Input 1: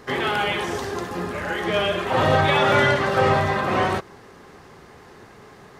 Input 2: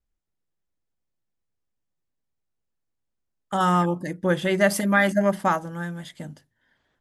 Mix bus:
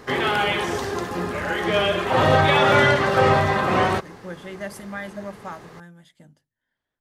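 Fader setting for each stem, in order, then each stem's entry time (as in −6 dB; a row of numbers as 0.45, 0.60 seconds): +1.5, −13.5 decibels; 0.00, 0.00 seconds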